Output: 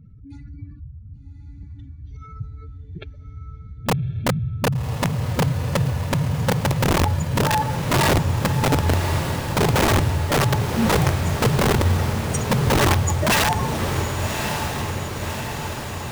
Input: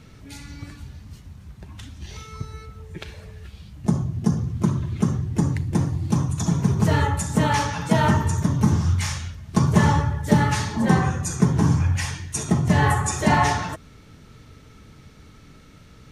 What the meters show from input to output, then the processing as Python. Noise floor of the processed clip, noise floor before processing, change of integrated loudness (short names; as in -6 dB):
-40 dBFS, -48 dBFS, +0.5 dB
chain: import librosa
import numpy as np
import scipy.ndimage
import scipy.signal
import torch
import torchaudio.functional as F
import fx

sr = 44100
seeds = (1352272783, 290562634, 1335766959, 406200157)

y = fx.spec_expand(x, sr, power=2.5)
y = (np.mod(10.0 ** (14.5 / 20.0) * y + 1.0, 2.0) - 1.0) / 10.0 ** (14.5 / 20.0)
y = fx.echo_diffused(y, sr, ms=1136, feedback_pct=65, wet_db=-6.0)
y = y * 10.0 ** (1.0 / 20.0)